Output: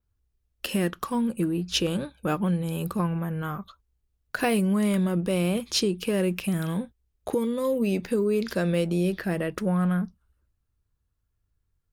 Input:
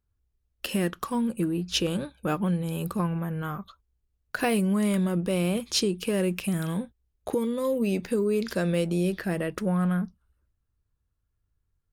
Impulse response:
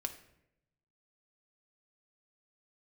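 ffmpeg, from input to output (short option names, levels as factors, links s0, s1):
-af "adynamicequalizer=threshold=0.002:dfrequency=8100:dqfactor=1.5:tfrequency=8100:tqfactor=1.5:attack=5:release=100:ratio=0.375:range=2:mode=cutabove:tftype=bell,volume=1.12"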